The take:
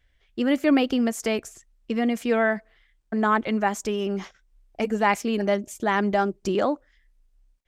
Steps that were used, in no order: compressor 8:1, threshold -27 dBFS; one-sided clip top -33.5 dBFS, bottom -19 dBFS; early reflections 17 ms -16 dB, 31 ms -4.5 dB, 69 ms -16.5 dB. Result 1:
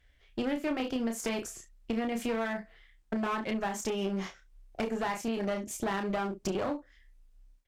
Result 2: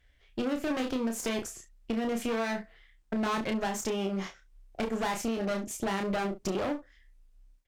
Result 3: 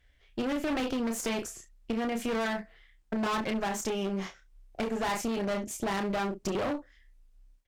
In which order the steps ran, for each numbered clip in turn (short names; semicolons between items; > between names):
early reflections > compressor > one-sided clip; one-sided clip > early reflections > compressor; early reflections > one-sided clip > compressor